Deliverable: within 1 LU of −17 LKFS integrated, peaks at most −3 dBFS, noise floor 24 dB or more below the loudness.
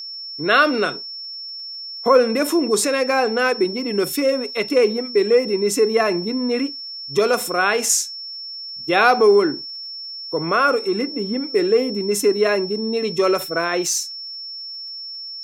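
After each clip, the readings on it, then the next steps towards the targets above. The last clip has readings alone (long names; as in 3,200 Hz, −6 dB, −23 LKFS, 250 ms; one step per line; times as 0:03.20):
crackle rate 25 per second; interfering tone 5,400 Hz; level of the tone −30 dBFS; integrated loudness −20.0 LKFS; sample peak −2.0 dBFS; target loudness −17.0 LKFS
→ click removal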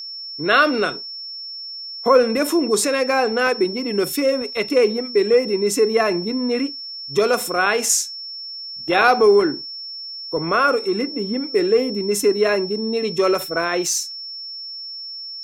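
crackle rate 1.3 per second; interfering tone 5,400 Hz; level of the tone −30 dBFS
→ notch filter 5,400 Hz, Q 30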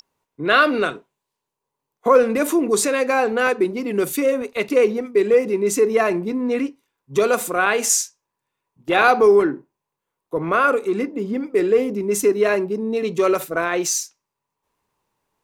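interfering tone none found; integrated loudness −19.0 LKFS; sample peak −2.0 dBFS; target loudness −17.0 LKFS
→ level +2 dB
brickwall limiter −3 dBFS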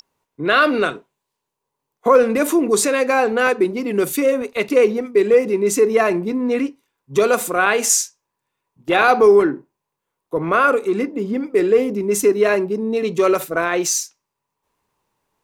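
integrated loudness −17.5 LKFS; sample peak −3.0 dBFS; background noise floor −80 dBFS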